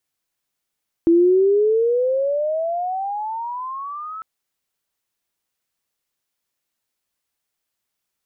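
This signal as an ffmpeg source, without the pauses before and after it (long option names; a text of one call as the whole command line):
ffmpeg -f lavfi -i "aevalsrc='pow(10,(-10-19*t/3.15)/20)*sin(2*PI*330*3.15/(24*log(2)/12)*(exp(24*log(2)/12*t/3.15)-1))':duration=3.15:sample_rate=44100" out.wav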